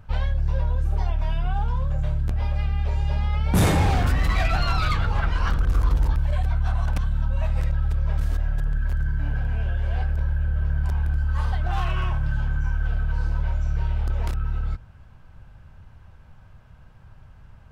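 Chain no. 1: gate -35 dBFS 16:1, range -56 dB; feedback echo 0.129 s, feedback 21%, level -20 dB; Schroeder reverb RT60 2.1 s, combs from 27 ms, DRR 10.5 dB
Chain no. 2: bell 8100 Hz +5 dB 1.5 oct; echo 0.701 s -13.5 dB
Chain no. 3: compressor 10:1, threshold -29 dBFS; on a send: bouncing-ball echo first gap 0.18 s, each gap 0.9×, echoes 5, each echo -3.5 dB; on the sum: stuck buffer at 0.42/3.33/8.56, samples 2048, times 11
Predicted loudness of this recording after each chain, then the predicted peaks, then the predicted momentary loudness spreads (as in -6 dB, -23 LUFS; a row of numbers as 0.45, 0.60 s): -27.0, -25.5, -32.5 LUFS; -10.5, -11.0, -19.5 dBFS; 6, 5, 16 LU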